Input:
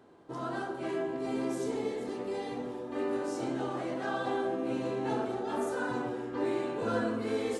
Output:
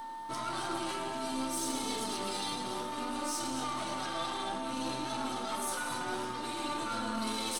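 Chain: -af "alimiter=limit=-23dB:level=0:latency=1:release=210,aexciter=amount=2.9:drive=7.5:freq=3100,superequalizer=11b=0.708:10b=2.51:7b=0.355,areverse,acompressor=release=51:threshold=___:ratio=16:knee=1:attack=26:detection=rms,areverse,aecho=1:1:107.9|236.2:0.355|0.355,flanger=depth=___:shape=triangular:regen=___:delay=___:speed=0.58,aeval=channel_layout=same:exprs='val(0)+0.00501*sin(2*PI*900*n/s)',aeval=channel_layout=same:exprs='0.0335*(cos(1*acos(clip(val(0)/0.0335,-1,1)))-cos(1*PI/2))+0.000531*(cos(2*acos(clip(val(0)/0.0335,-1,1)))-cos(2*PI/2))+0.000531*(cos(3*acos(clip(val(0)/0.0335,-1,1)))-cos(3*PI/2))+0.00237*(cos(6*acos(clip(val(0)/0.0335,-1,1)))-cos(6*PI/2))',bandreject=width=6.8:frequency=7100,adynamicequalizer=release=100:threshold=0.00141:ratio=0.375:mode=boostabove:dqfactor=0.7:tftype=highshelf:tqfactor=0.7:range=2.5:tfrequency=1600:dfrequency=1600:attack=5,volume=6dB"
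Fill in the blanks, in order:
-40dB, 2.9, 43, 3.1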